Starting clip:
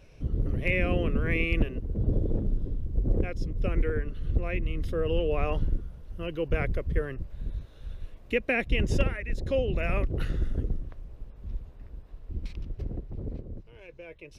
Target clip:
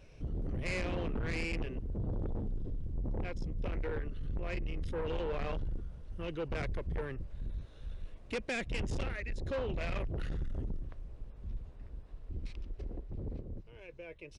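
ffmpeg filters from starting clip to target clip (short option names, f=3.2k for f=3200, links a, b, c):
-filter_complex "[0:a]asettb=1/sr,asplit=3[a][b][c];[a]atrim=end=12.504[d];[b]atrim=start=12.5:end=13.08,asetpts=PTS-STARTPTS,afade=t=in:d=0.004:c=qsin,afade=t=out:st=0.576:d=0.004:c=qsin,equalizer=f=130:w=1.4:g=-15[e];[c]atrim=start=13.076[f];[d][e]acrossfade=d=0.004:c1=hsin:c2=qsin[g];[g][f]acrossfade=d=0.004:c1=qsin:c2=hsin,asoftclip=type=tanh:threshold=-29dB,aresample=22050,aresample=44100,volume=-2.5dB"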